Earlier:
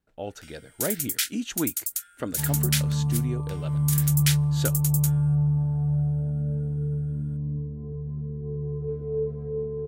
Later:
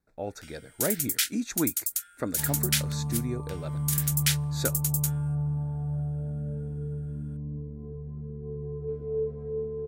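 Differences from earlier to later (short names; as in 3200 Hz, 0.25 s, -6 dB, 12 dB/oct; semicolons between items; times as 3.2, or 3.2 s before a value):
speech: add Butterworth band-stop 3000 Hz, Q 3; second sound: add bell 120 Hz -14.5 dB 0.41 oct; reverb: off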